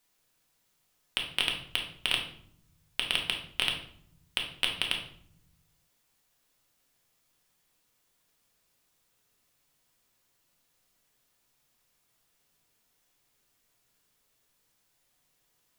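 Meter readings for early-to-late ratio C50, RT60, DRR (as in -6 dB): 6.5 dB, 0.65 s, 0.5 dB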